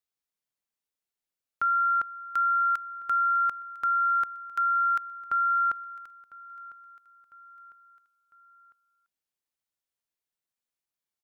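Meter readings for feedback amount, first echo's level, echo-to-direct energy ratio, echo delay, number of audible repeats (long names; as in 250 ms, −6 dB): 46%, −20.0 dB, −19.0 dB, 1,002 ms, 3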